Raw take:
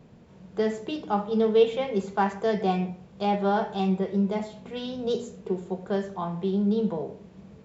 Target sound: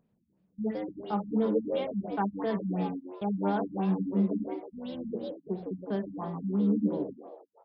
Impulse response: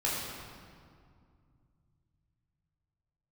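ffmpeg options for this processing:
-filter_complex "[0:a]agate=range=-52dB:threshold=-37dB:ratio=16:detection=peak,equalizer=frequency=210:width=2.8:gain=5.5,asplit=2[link_01][link_02];[link_02]asplit=5[link_03][link_04][link_05][link_06][link_07];[link_03]adelay=159,afreqshift=91,volume=-6dB[link_08];[link_04]adelay=318,afreqshift=182,volume=-14dB[link_09];[link_05]adelay=477,afreqshift=273,volume=-21.9dB[link_10];[link_06]adelay=636,afreqshift=364,volume=-29.9dB[link_11];[link_07]adelay=795,afreqshift=455,volume=-37.8dB[link_12];[link_08][link_09][link_10][link_11][link_12]amix=inputs=5:normalize=0[link_13];[link_01][link_13]amix=inputs=2:normalize=0,acompressor=mode=upward:threshold=-39dB:ratio=2.5,afftfilt=real='re*lt(b*sr/1024,250*pow(5600/250,0.5+0.5*sin(2*PI*2.9*pts/sr)))':imag='im*lt(b*sr/1024,250*pow(5600/250,0.5+0.5*sin(2*PI*2.9*pts/sr)))':win_size=1024:overlap=0.75,volume=-7dB"

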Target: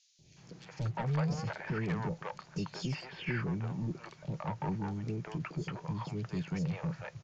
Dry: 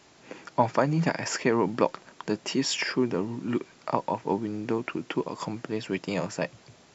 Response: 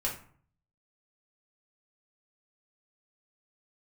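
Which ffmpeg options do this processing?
-filter_complex "[0:a]lowshelf=frequency=210:width_type=q:width=3:gain=7,acrossover=split=3800[link_01][link_02];[link_02]acompressor=threshold=-46dB:ratio=4:attack=1:release=60[link_03];[link_01][link_03]amix=inputs=2:normalize=0,aresample=16000,asoftclip=type=tanh:threshold=-24dB,aresample=44100,acrossover=split=530|3500[link_04][link_05][link_06];[link_04]adelay=180[link_07];[link_05]adelay=350[link_08];[link_07][link_08][link_06]amix=inputs=3:normalize=0,asetrate=42336,aresample=44100,volume=-5dB"

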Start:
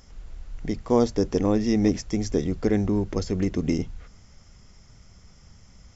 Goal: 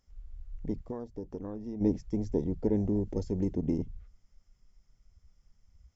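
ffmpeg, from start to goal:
ffmpeg -i in.wav -filter_complex "[0:a]afwtdn=0.0355,asplit=3[link_01][link_02][link_03];[link_01]afade=type=out:start_time=0.82:duration=0.02[link_04];[link_02]acompressor=threshold=-31dB:ratio=6,afade=type=in:start_time=0.82:duration=0.02,afade=type=out:start_time=1.8:duration=0.02[link_05];[link_03]afade=type=in:start_time=1.8:duration=0.02[link_06];[link_04][link_05][link_06]amix=inputs=3:normalize=0,asettb=1/sr,asplit=3[link_07][link_08][link_09];[link_07]atrim=end=2.764[link_10];[link_08]atrim=start=2.76:end=3.54,asetpts=PTS-STARTPTS,afade=type=in:duration=0.004:curve=qsin,afade=type=out:start_time=0.776:duration=0.004:curve=qsin,highshelf=frequency=6300:gain=12[link_11];[link_09]atrim=start=3.536[link_12];[link_10][link_11]acrossfade=duration=0.004:curve1=hsin:curve2=qsin[link_13];[link_13][link_12]acrossfade=duration=0.004:curve1=qsin:curve2=hsin,volume=-5.5dB" out.wav

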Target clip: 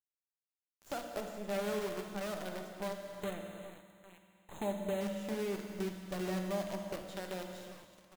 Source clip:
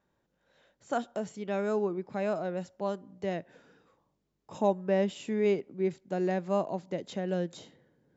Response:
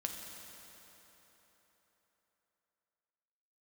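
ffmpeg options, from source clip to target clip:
-filter_complex "[0:a]asettb=1/sr,asplit=3[link_01][link_02][link_03];[link_01]atrim=end=7.024[link_04];[link_02]atrim=start=7.02:end=7.52,asetpts=PTS-STARTPTS,afade=type=in:duration=0.004:curve=qsin,afade=type=out:start_time=0.496:duration=0.004:curve=qsin,highpass=400[link_05];[link_03]atrim=start=7.516[link_06];[link_04][link_05]acrossfade=duration=0.004:curve1=hsin:curve2=qsin[link_07];[link_07][link_06]acrossfade=duration=0.004:curve1=qsin:curve2=hsin,aecho=1:1:398|796|1194:0.0944|0.0415|0.0183,acrusher=bits=6:dc=4:mix=0:aa=0.000001,acompressor=threshold=-45dB:ratio=2,asettb=1/sr,asplit=3[link_08][link_09][link_10];[link_08]atrim=end=1.024[link_11];[link_09]atrim=start=1.02:end=1.7,asetpts=PTS-STARTPTS,afade=type=in:duration=0.004:curve=qsin,afade=type=out:start_time=0.676:duration=0.004:curve=qsin,equalizer=frequency=560:width_type=o:width=0.93:gain=4.5[link_12];[link_10]atrim=start=1.696[link_13];[link_11][link_12]acrossfade=duration=0.004:curve1=hsin:curve2=qsin[link_14];[link_14][link_13]acrossfade=duration=0.004:curve1=qsin:curve2=hsin,asettb=1/sr,asplit=3[link_15][link_16][link_17];[link_15]atrim=end=3.194[link_18];[link_16]atrim=start=3.19:end=5.01,asetpts=PTS-STARTPTS,afade=type=in:duration=0.004:curve=qsin,afade=type=out:start_time=1.816:duration=0.004:curve=qsin,asuperstop=centerf=5200:order=20:qfactor=2.5[link_19];[link_17]atrim=start=5.006[link_20];[link_18][link_19]acrossfade=duration=0.004:curve1=hsin:curve2=qsin[link_21];[link_21][link_20]acrossfade=duration=0.004:curve1=qsin:curve2=hsin[link_22];[1:a]atrim=start_sample=2205,afade=type=out:start_time=0.44:duration=0.01,atrim=end_sample=19845[link_23];[link_22][link_23]afir=irnorm=-1:irlink=0,volume=1.5dB"

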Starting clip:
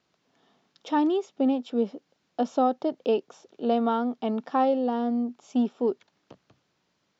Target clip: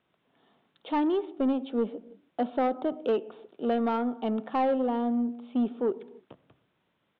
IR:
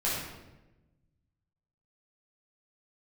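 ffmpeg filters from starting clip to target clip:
-filter_complex "[0:a]aresample=8000,aresample=44100,acontrast=70,asplit=2[link_01][link_02];[1:a]atrim=start_sample=2205,afade=type=out:start_time=0.38:duration=0.01,atrim=end_sample=17199,lowpass=2300[link_03];[link_02][link_03]afir=irnorm=-1:irlink=0,volume=-23dB[link_04];[link_01][link_04]amix=inputs=2:normalize=0,asoftclip=type=tanh:threshold=-11dB,volume=-7.5dB"

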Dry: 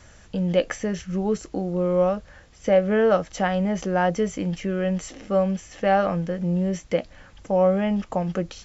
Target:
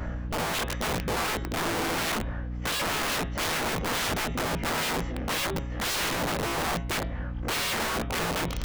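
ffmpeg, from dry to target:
ffmpeg -i in.wav -filter_complex "[0:a]afftfilt=real='re':imag='-im':win_size=2048:overlap=0.75,lowpass=1500,areverse,acompressor=mode=upward:threshold=-34dB:ratio=2.5,areverse,alimiter=limit=-19.5dB:level=0:latency=1:release=80,asplit=2[link_01][link_02];[link_02]acompressor=threshold=-39dB:ratio=6,volume=3dB[link_03];[link_01][link_03]amix=inputs=2:normalize=0,aeval=exprs='0.141*(cos(1*acos(clip(val(0)/0.141,-1,1)))-cos(1*PI/2))+0.00251*(cos(5*acos(clip(val(0)/0.141,-1,1)))-cos(5*PI/2))':channel_layout=same,aeval=exprs='val(0)+0.0158*(sin(2*PI*60*n/s)+sin(2*PI*2*60*n/s)/2+sin(2*PI*3*60*n/s)/3+sin(2*PI*4*60*n/s)/4+sin(2*PI*5*60*n/s)/5)':channel_layout=same,aeval=exprs='(mod(20*val(0)+1,2)-1)/20':channel_layout=same,bandreject=frequency=137:width_type=h:width=4,bandreject=frequency=274:width_type=h:width=4,bandreject=frequency=411:width_type=h:width=4,bandreject=frequency=548:width_type=h:width=4,bandreject=frequency=685:width_type=h:width=4,bandreject=frequency=822:width_type=h:width=4,bandreject=frequency=959:width_type=h:width=4,bandreject=frequency=1096:width_type=h:width=4,bandreject=frequency=1233:width_type=h:width=4,bandreject=frequency=1370:width_type=h:width=4,bandreject=frequency=1507:width_type=h:width=4,bandreject=frequency=1644:width_type=h:width=4,bandreject=frequency=1781:width_type=h:width=4,bandreject=frequency=1918:width_type=h:width=4,bandreject=frequency=2055:width_type=h:width=4,bandreject=frequency=2192:width_type=h:width=4,bandreject=frequency=2329:width_type=h:width=4,bandreject=frequency=2466:width_type=h:width=4,bandreject=frequency=2603:width_type=h:width=4,bandreject=frequency=2740:width_type=h:width=4,bandreject=frequency=2877:width_type=h:width=4,bandreject=frequency=3014:width_type=h:width=4,bandreject=frequency=3151:width_type=h:width=4,bandreject=frequency=3288:width_type=h:width=4,bandreject=frequency=3425:width_type=h:width=4,bandreject=frequency=3562:width_type=h:width=4,bandreject=frequency=3699:width_type=h:width=4,bandreject=frequency=3836:width_type=h:width=4,asoftclip=type=tanh:threshold=-27.5dB,volume=4.5dB" out.wav

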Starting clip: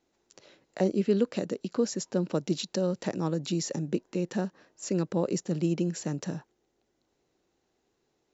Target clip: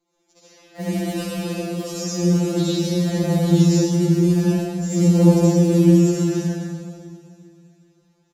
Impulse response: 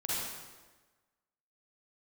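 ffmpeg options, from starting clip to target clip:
-filter_complex "[0:a]asettb=1/sr,asplit=3[link_01][link_02][link_03];[link_01]atrim=end=3.084[link_04];[link_02]atrim=start=3.08:end=5.38,asetpts=PTS-STARTPTS,afade=type=in:duration=0.004:curve=qsin,afade=type=out:start_time=2.296:duration=0.004:curve=qsin,lowshelf=frequency=120:gain=10[link_05];[link_03]atrim=start=5.376[link_06];[link_04][link_05]acrossfade=duration=0.004:curve1=hsin:curve2=qsin[link_07];[link_07][link_06]acrossfade=duration=0.004:curve1=qsin:curve2=hsin,acrusher=bits=4:mode=log:mix=0:aa=0.000001,aecho=1:1:400|800|1200|1600:0.1|0.049|0.024|0.0118[link_08];[1:a]atrim=start_sample=2205,asetrate=27783,aresample=44100[link_09];[link_08][link_09]afir=irnorm=-1:irlink=0,afftfilt=real='re*2.83*eq(mod(b,8),0)':imag='im*2.83*eq(mod(b,8),0)':win_size=2048:overlap=0.75,volume=1dB"

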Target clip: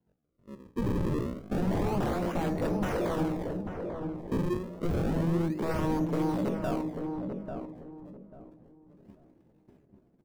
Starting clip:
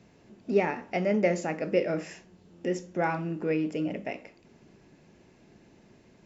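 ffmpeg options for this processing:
ffmpeg -i in.wav -filter_complex "[0:a]agate=range=-28dB:threshold=-54dB:ratio=16:detection=peak,aemphasis=mode=production:type=cd,acrusher=samples=35:mix=1:aa=0.000001:lfo=1:lforange=56:lforate=0.47,atempo=0.61,aeval=exprs='0.0316*(abs(mod(val(0)/0.0316+3,4)-2)-1)':channel_layout=same,tiltshelf=frequency=1300:gain=7.5,asplit=2[link_01][link_02];[link_02]adelay=842,lowpass=frequency=890:poles=1,volume=-4.5dB,asplit=2[link_03][link_04];[link_04]adelay=842,lowpass=frequency=890:poles=1,volume=0.28,asplit=2[link_05][link_06];[link_06]adelay=842,lowpass=frequency=890:poles=1,volume=0.28,asplit=2[link_07][link_08];[link_08]adelay=842,lowpass=frequency=890:poles=1,volume=0.28[link_09];[link_03][link_05][link_07][link_09]amix=inputs=4:normalize=0[link_10];[link_01][link_10]amix=inputs=2:normalize=0" out.wav

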